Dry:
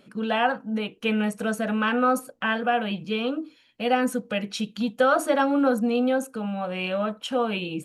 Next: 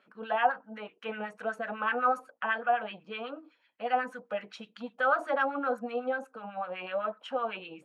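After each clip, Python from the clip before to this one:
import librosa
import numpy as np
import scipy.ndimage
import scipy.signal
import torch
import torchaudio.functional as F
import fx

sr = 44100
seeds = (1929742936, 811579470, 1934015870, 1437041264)

y = fx.filter_lfo_bandpass(x, sr, shape='sine', hz=8.0, low_hz=670.0, high_hz=1800.0, q=2.0)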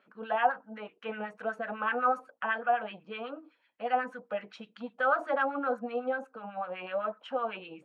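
y = fx.lowpass(x, sr, hz=3100.0, slope=6)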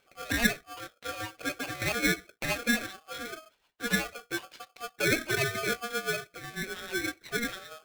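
y = x * np.sign(np.sin(2.0 * np.pi * 950.0 * np.arange(len(x)) / sr))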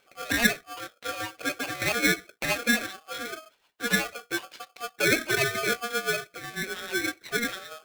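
y = fx.low_shelf(x, sr, hz=120.0, db=-10.0)
y = y * librosa.db_to_amplitude(4.0)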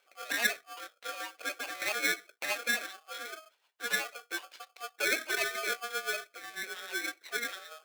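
y = scipy.signal.sosfilt(scipy.signal.butter(2, 500.0, 'highpass', fs=sr, output='sos'), x)
y = y * librosa.db_to_amplitude(-5.5)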